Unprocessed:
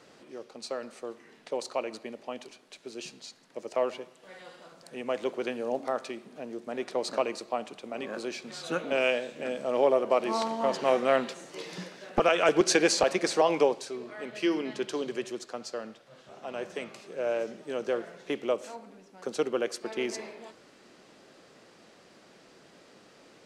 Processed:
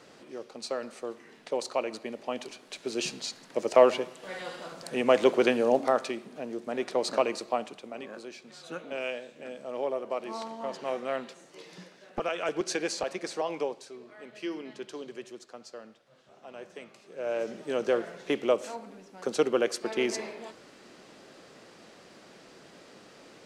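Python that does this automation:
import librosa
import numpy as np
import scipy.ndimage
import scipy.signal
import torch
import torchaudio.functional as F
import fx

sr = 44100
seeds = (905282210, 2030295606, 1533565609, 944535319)

y = fx.gain(x, sr, db=fx.line((1.97, 2.0), (3.05, 9.5), (5.43, 9.5), (6.36, 2.5), (7.54, 2.5), (8.25, -8.0), (17.0, -8.0), (17.58, 3.5)))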